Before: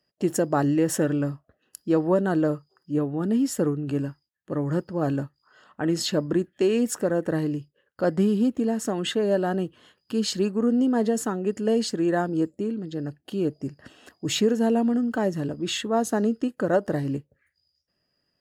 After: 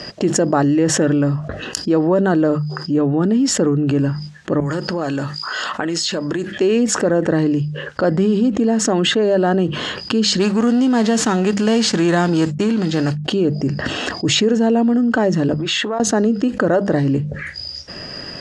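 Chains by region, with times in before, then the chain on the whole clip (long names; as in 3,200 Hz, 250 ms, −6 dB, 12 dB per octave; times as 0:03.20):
0:04.60–0:06.52: spectral tilt +3 dB per octave + downward compressor, threshold −41 dBFS
0:10.39–0:13.24: spectral envelope flattened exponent 0.6 + downward expander −37 dBFS
0:15.54–0:16.00: high-shelf EQ 3,000 Hz −10.5 dB + downward compressor, threshold −33 dBFS + high-pass filter 1,100 Hz 6 dB per octave
whole clip: low-pass filter 6,900 Hz 24 dB per octave; mains-hum notches 50/100/150/200 Hz; envelope flattener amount 70%; level +4 dB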